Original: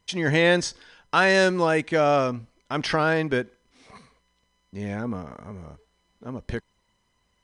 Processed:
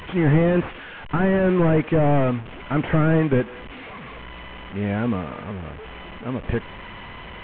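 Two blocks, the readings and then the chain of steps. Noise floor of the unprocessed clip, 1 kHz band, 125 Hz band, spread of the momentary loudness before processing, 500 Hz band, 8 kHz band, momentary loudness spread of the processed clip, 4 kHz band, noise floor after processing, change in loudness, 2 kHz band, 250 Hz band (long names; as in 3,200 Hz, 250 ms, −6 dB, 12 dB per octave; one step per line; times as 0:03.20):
−71 dBFS, −2.0 dB, +9.5 dB, 19 LU, +1.0 dB, below −35 dB, 19 LU, −8.5 dB, −38 dBFS, +1.0 dB, −5.0 dB, +7.0 dB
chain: linear delta modulator 16 kbit/s, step −38 dBFS
level +7 dB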